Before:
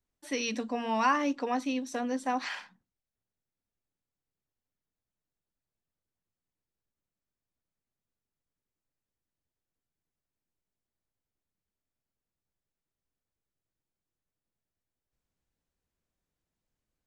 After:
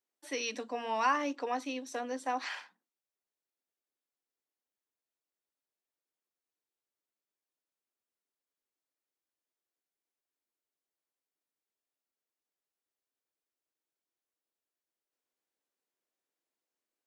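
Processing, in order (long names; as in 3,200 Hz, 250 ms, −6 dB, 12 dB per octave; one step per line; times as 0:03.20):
high-pass filter 300 Hz 24 dB per octave
level −2.5 dB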